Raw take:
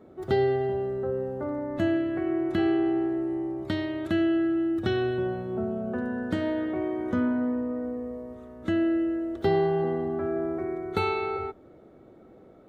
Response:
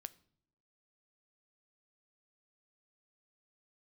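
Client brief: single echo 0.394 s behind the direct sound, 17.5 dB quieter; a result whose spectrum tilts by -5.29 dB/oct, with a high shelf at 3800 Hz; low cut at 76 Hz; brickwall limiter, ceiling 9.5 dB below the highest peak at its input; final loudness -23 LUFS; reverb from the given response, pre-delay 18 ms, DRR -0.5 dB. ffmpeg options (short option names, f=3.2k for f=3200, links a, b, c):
-filter_complex "[0:a]highpass=76,highshelf=f=3.8k:g=-4,alimiter=limit=-22.5dB:level=0:latency=1,aecho=1:1:394:0.133,asplit=2[a][b];[1:a]atrim=start_sample=2205,adelay=18[c];[b][c]afir=irnorm=-1:irlink=0,volume=5.5dB[d];[a][d]amix=inputs=2:normalize=0,volume=2.5dB"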